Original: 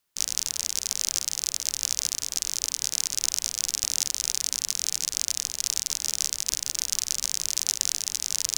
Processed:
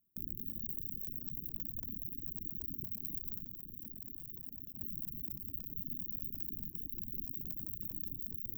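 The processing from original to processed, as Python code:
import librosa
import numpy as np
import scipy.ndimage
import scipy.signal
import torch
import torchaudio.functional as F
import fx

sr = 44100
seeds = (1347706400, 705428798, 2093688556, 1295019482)

y = fx.reverse_delay(x, sr, ms=181, wet_db=-6.0)
y = fx.high_shelf(y, sr, hz=7100.0, db=-8.5)
y = (np.mod(10.0 ** (14.5 / 20.0) * y + 1.0, 2.0) - 1.0) / 10.0 ** (14.5 / 20.0)
y = y + 10.0 ** (-12.5 / 20.0) * np.pad(y, (int(230 * sr / 1000.0), 0))[:len(y)]
y = 10.0 ** (-29.0 / 20.0) * np.tanh(y / 10.0 ** (-29.0 / 20.0))
y = scipy.signal.sosfilt(scipy.signal.cheby2(4, 50, [670.0, 8900.0], 'bandstop', fs=sr, output='sos'), y)
y = y + 10.0 ** (-20.5 / 20.0) * np.pad(y, (int(254 * sr / 1000.0), 0))[:len(y)]
y = fx.dereverb_blind(y, sr, rt60_s=2.0)
y = fx.level_steps(y, sr, step_db=19, at=(3.44, 4.8))
y = fx.low_shelf(y, sr, hz=140.0, db=-9.5)
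y = y * librosa.db_to_amplitude(11.0)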